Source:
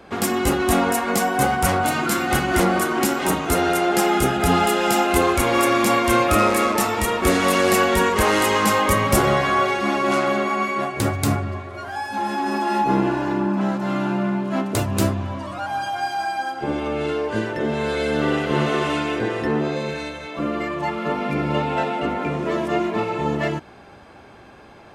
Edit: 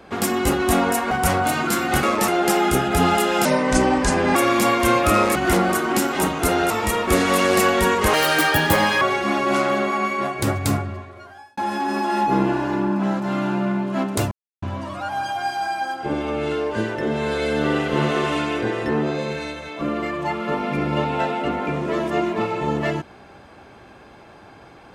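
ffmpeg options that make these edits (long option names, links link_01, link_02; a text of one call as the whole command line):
ffmpeg -i in.wav -filter_complex "[0:a]asplit=13[link_01][link_02][link_03][link_04][link_05][link_06][link_07][link_08][link_09][link_10][link_11][link_12][link_13];[link_01]atrim=end=1.112[link_14];[link_02]atrim=start=1.498:end=2.422[link_15];[link_03]atrim=start=6.598:end=6.852[link_16];[link_04]atrim=start=3.768:end=4.944[link_17];[link_05]atrim=start=4.94:end=5.6,asetpts=PTS-STARTPTS,asetrate=32193,aresample=44100,atrim=end_sample=39871,asetpts=PTS-STARTPTS[link_18];[link_06]atrim=start=5.596:end=6.602[link_19];[link_07]atrim=start=2.418:end=3.772[link_20];[link_08]atrim=start=6.848:end=8.284[link_21];[link_09]atrim=start=8.28:end=9.59,asetpts=PTS-STARTPTS,asetrate=65709,aresample=44100,atrim=end_sample=38772,asetpts=PTS-STARTPTS[link_22];[link_10]atrim=start=9.586:end=12.15,asetpts=PTS-STARTPTS,afade=type=out:start_time=1.634:duration=0.93[link_23];[link_11]atrim=start=12.15:end=14.89,asetpts=PTS-STARTPTS,afade=type=in:duration=0.004:curve=hsin,afade=type=out:start_time=2.736:duration=0.004:curve=hsin[link_24];[link_12]atrim=start=14.89:end=15.2,asetpts=PTS-STARTPTS,volume=0[link_25];[link_13]atrim=start=15.2,asetpts=PTS-STARTPTS,afade=type=in:duration=0.004:curve=hsin[link_26];[link_14][link_15]acrossfade=duration=0.004:curve1=hsin:curve2=hsin[link_27];[link_27][link_16]acrossfade=duration=0.004:curve1=hsin:curve2=hsin[link_28];[link_28][link_17]acrossfade=duration=0.004:curve1=hsin:curve2=hsin[link_29];[link_29][link_18]acrossfade=duration=0.004:curve1=hsin:curve2=hsin[link_30];[link_30][link_19]acrossfade=duration=0.004:curve1=hsin:curve2=hsin[link_31];[link_31][link_20]acrossfade=duration=0.004:curve1=hsin:curve2=hsin[link_32];[link_32][link_21]acrossfade=duration=0.004:curve1=hsin:curve2=hsin[link_33];[link_33][link_22]acrossfade=duration=0.004:curve1=hsin:curve2=hsin[link_34];[link_23][link_24][link_25][link_26]concat=n=4:v=0:a=1[link_35];[link_34][link_35]acrossfade=duration=0.004:curve1=hsin:curve2=hsin" out.wav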